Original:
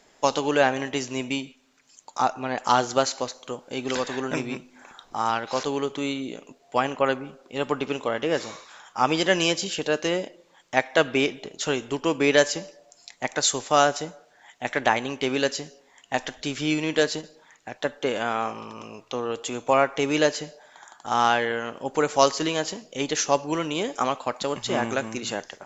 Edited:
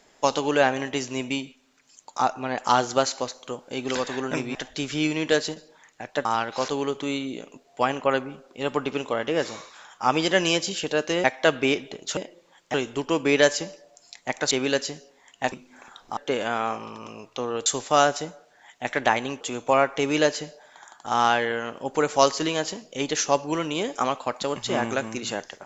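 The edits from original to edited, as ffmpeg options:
-filter_complex "[0:a]asplit=11[s0][s1][s2][s3][s4][s5][s6][s7][s8][s9][s10];[s0]atrim=end=4.552[s11];[s1]atrim=start=16.218:end=17.922[s12];[s2]atrim=start=5.198:end=10.192[s13];[s3]atrim=start=10.758:end=11.692[s14];[s4]atrim=start=10.188:end=10.762[s15];[s5]atrim=start=11.688:end=13.462[s16];[s6]atrim=start=15.208:end=16.222[s17];[s7]atrim=start=4.548:end=5.202[s18];[s8]atrim=start=17.918:end=19.412[s19];[s9]atrim=start=13.458:end=15.212[s20];[s10]atrim=start=19.408[s21];[s11][s12]acrossfade=d=0.004:c1=hsin:c2=hsin[s22];[s22][s13]acrossfade=d=0.004:c1=hsin:c2=hsin[s23];[s23][s14]acrossfade=d=0.004:c1=hsin:c2=hsin[s24];[s24][s15]acrossfade=d=0.004:c1=hsin:c2=hsin[s25];[s25][s16]acrossfade=d=0.004:c1=hsin:c2=hsin[s26];[s26][s17]acrossfade=d=0.004:c1=hsin:c2=hsin[s27];[s27][s18]acrossfade=d=0.004:c1=hsin:c2=hsin[s28];[s28][s19]acrossfade=d=0.004:c1=hsin:c2=hsin[s29];[s29][s20]acrossfade=d=0.004:c1=hsin:c2=hsin[s30];[s30][s21]acrossfade=d=0.004:c1=hsin:c2=hsin"

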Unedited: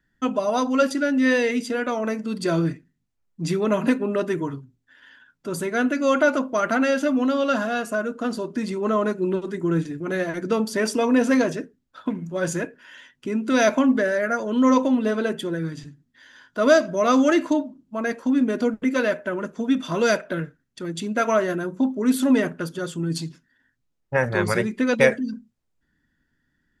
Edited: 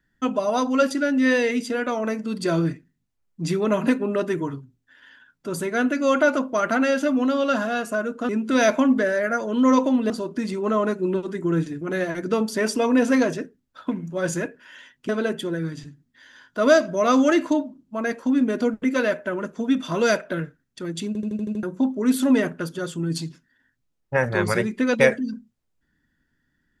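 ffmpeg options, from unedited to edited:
-filter_complex "[0:a]asplit=11[s0][s1][s2][s3][s4][s5][s6][s7][s8][s9][s10];[s0]atrim=end=8.292[s11];[s1]atrim=start=13.278:end=15.092[s12];[s2]atrim=start=8.288:end=13.282[s13];[s3]atrim=start=15.088:end=21.152[s14];[s4]atrim=start=21.068:end=21.152[s15];[s5]atrim=start=21.068:end=21.152[s16];[s6]atrim=start=21.068:end=21.152[s17];[s7]atrim=start=21.068:end=21.152[s18];[s8]atrim=start=21.068:end=21.152[s19];[s9]atrim=start=21.068:end=21.152[s20];[s10]atrim=start=21.628[s21];[s11][s12]acrossfade=d=0.004:c1=hsin:c2=hsin[s22];[s22][s13]acrossfade=d=0.004:c1=hsin:c2=hsin[s23];[s23][s14]acrossfade=d=0.004:c1=hsin:c2=hsin[s24];[s24][s15]acrossfade=d=0.004:c1=hsin:c2=hsin[s25];[s25][s16]acrossfade=d=0.004:c1=hsin:c2=hsin[s26];[s26][s17]acrossfade=d=0.004:c1=hsin:c2=hsin[s27];[s27][s18]acrossfade=d=0.004:c1=hsin:c2=hsin[s28];[s28][s19]acrossfade=d=0.004:c1=hsin:c2=hsin[s29];[s29][s20]acrossfade=d=0.004:c1=hsin:c2=hsin[s30];[s30][s21]acrossfade=d=0.004:c1=hsin:c2=hsin"

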